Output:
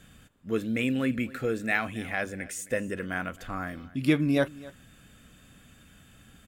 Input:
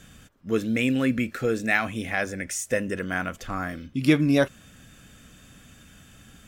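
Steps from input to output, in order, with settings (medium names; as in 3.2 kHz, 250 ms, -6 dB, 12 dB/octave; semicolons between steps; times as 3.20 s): peaking EQ 5.8 kHz -7.5 dB 0.43 oct; delay 265 ms -20 dB; trim -4 dB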